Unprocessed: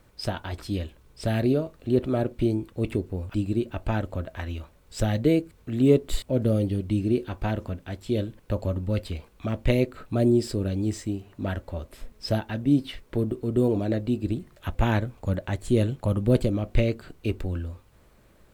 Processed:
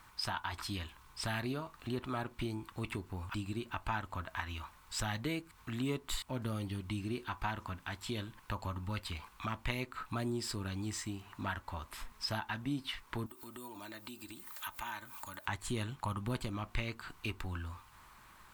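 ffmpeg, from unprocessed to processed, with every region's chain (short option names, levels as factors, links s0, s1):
-filter_complex "[0:a]asettb=1/sr,asplit=3[s0][s1][s2];[s0]atrim=end=13.264[s3];[s1]atrim=start=13.26:end=15.46,asetpts=PTS-STARTPTS,afade=t=in:d=0.004:c=qsin,afade=t=out:st=2.196:d=0.004:c=qsin,aemphasis=mode=production:type=bsi,acompressor=threshold=0.00562:ratio=3:attack=3.2:release=140:knee=1:detection=peak,aecho=1:1:3.3:0.48,atrim=end_sample=97020[s4];[s2]atrim=start=15.456[s5];[s3][s4]acrossfade=d=0.004:c1=hsin:c2=qsin[s6];[s6][s5]acrossfade=d=0.004:c1=qsin:c2=hsin,lowshelf=f=730:t=q:w=3:g=-10,acompressor=threshold=0.00708:ratio=2,volume=1.5"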